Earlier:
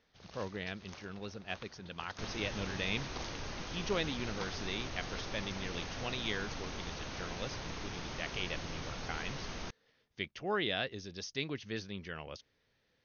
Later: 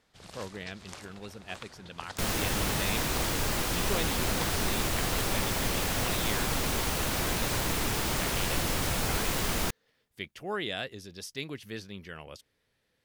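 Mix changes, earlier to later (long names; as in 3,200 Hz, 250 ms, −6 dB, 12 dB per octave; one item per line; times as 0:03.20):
first sound +6.0 dB
second sound +12.0 dB
master: remove linear-phase brick-wall low-pass 6,600 Hz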